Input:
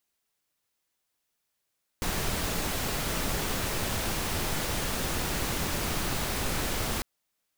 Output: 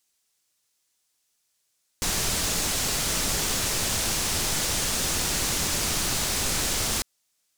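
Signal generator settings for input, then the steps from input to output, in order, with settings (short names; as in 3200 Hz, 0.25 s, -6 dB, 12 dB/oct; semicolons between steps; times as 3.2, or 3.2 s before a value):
noise pink, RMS -30 dBFS 5.00 s
bell 6900 Hz +11 dB 2.1 oct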